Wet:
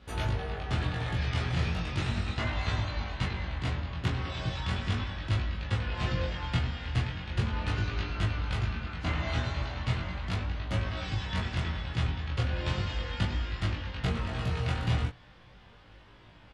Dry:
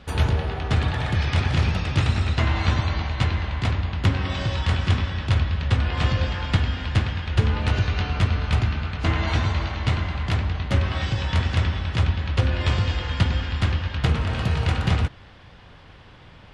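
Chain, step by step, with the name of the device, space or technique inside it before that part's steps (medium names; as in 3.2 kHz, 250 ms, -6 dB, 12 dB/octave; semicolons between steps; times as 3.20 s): double-tracked vocal (doubling 17 ms -3.5 dB; chorus 0.37 Hz, delay 20 ms, depth 4.4 ms); trim -6 dB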